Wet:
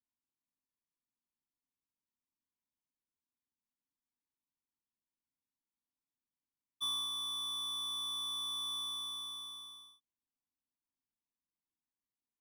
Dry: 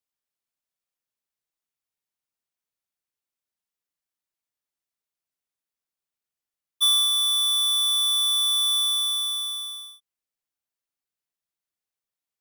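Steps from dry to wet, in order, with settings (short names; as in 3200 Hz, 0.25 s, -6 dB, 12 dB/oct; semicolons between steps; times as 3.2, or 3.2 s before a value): EQ curve 180 Hz 0 dB, 260 Hz +8 dB, 610 Hz -20 dB, 970 Hz 0 dB, 1400 Hz -17 dB, 2100 Hz -13 dB, 3500 Hz -15 dB, 7600 Hz -15 dB, 15000 Hz -26 dB; gain -1.5 dB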